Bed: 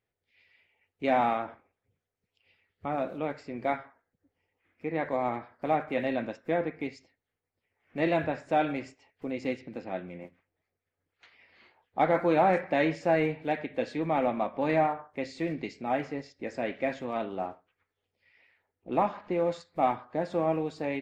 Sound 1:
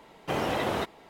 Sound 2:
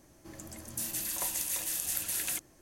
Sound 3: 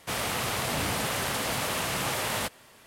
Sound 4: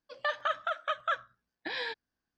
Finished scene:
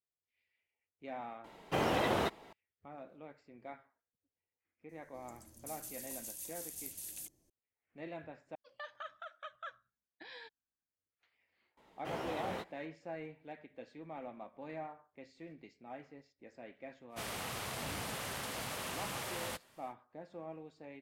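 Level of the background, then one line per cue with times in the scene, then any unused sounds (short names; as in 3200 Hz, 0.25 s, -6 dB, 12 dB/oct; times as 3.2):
bed -19 dB
1.44 add 1 -3 dB
4.89 add 2 -11.5 dB + bell 1400 Hz -14 dB 1.9 oct
8.55 replace with 4 -15.5 dB
11.77 add 1 -9.5 dB + chorus 2.1 Hz, delay 15 ms, depth 8 ms
17.09 add 3 -11.5 dB, fades 0.10 s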